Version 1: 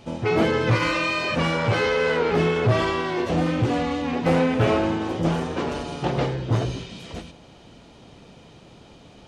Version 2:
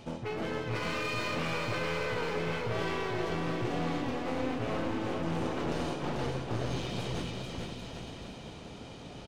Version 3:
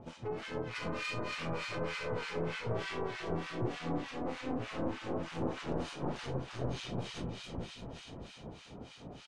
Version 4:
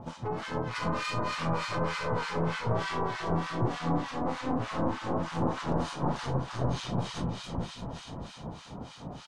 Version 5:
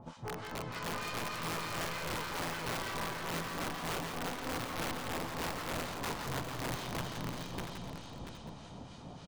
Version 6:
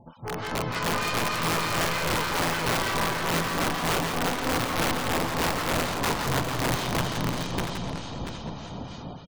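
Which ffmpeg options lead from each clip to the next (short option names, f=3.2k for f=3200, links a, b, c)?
-af "areverse,acompressor=threshold=-30dB:ratio=12,areverse,aeval=exprs='clip(val(0),-1,0.0141)':c=same,aecho=1:1:440|792|1074|1299|1479:0.631|0.398|0.251|0.158|0.1"
-filter_complex "[0:a]lowpass=f=10k:w=0.5412,lowpass=f=10k:w=1.3066,acrossover=split=1200[a][b];[a]aeval=exprs='val(0)*(1-1/2+1/2*cos(2*PI*3.3*n/s))':c=same[c];[b]aeval=exprs='val(0)*(1-1/2-1/2*cos(2*PI*3.3*n/s))':c=same[d];[c][d]amix=inputs=2:normalize=0"
-af "equalizer=f=160:t=o:w=0.67:g=3,equalizer=f=400:t=o:w=0.67:g=-5,equalizer=f=1k:t=o:w=0.67:g=6,equalizer=f=2.5k:t=o:w=0.67:g=-6,volume=6.5dB"
-filter_complex "[0:a]aeval=exprs='(mod(15*val(0)+1,2)-1)/15':c=same,asplit=2[a][b];[b]aecho=0:1:170|687|768|890:0.447|0.376|0.158|0.141[c];[a][c]amix=inputs=2:normalize=0,volume=-7.5dB"
-af "dynaudnorm=f=120:g=5:m=11.5dB,afftfilt=real='re*gte(hypot(re,im),0.00316)':imag='im*gte(hypot(re,im),0.00316)':win_size=1024:overlap=0.75"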